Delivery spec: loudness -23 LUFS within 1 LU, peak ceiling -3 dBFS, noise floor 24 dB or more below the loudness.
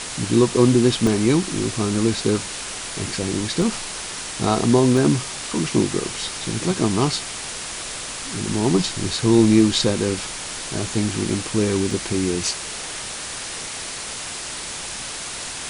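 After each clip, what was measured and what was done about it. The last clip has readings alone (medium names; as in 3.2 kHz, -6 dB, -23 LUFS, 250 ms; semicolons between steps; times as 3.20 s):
dropouts 6; longest dropout 1.2 ms; noise floor -31 dBFS; noise floor target -46 dBFS; loudness -21.5 LUFS; peak level -3.5 dBFS; loudness target -23.0 LUFS
-> interpolate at 1.07/3.62/4.97/6.49/11.30/11.91 s, 1.2 ms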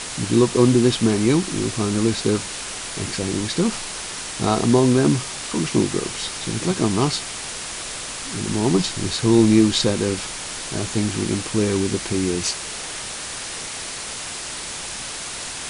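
dropouts 0; noise floor -31 dBFS; noise floor target -46 dBFS
-> noise reduction 15 dB, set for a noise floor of -31 dBFS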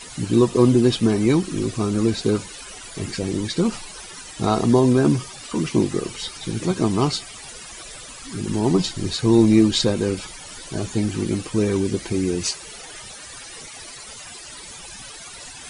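noise floor -39 dBFS; noise floor target -45 dBFS
-> noise reduction 6 dB, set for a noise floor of -39 dBFS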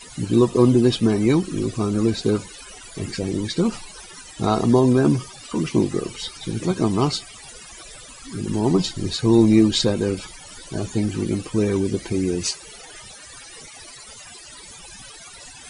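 noise floor -42 dBFS; noise floor target -45 dBFS
-> noise reduction 6 dB, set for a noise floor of -42 dBFS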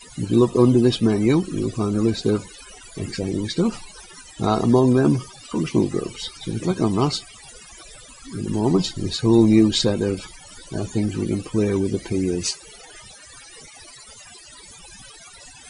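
noise floor -45 dBFS; loudness -21.0 LUFS; peak level -4.0 dBFS; loudness target -23.0 LUFS
-> trim -2 dB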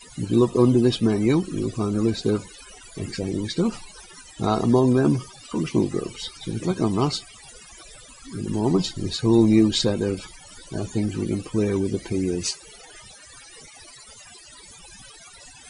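loudness -23.0 LUFS; peak level -6.0 dBFS; noise floor -47 dBFS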